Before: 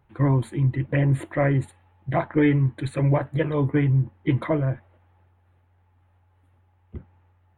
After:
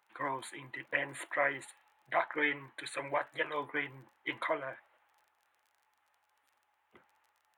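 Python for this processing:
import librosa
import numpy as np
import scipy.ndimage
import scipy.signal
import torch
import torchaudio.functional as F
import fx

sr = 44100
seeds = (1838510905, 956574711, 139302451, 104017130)

y = fx.dmg_crackle(x, sr, seeds[0], per_s=27.0, level_db=-53.0)
y = scipy.signal.sosfilt(scipy.signal.butter(2, 1000.0, 'highpass', fs=sr, output='sos'), y)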